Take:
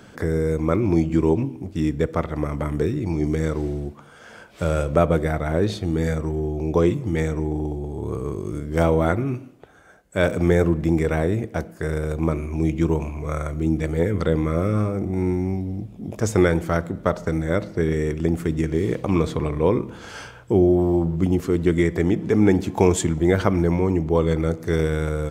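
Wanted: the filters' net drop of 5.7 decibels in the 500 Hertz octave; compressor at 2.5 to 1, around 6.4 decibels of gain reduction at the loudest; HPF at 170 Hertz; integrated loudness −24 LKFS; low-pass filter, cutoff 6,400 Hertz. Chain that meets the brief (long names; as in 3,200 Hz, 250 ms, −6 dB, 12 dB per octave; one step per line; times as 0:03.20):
high-pass filter 170 Hz
low-pass filter 6,400 Hz
parametric band 500 Hz −7.5 dB
downward compressor 2.5 to 1, threshold −26 dBFS
level +7 dB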